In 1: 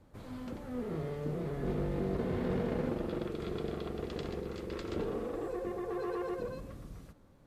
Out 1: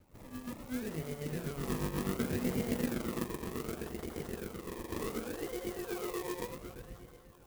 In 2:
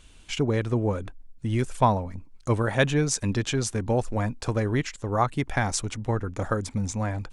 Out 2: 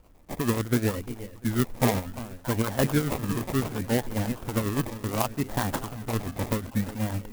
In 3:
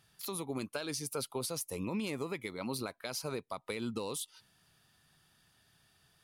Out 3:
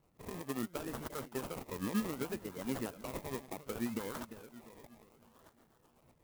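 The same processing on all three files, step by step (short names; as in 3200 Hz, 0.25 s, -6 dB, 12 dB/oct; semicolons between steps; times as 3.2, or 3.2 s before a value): dynamic EQ 240 Hz, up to +6 dB, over -44 dBFS, Q 2.5; split-band echo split 740 Hz, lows 0.347 s, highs 0.625 s, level -13.5 dB; harmonic tremolo 8.1 Hz, depth 70%, crossover 690 Hz; decimation with a swept rate 24×, swing 60% 0.67 Hz; clock jitter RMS 0.056 ms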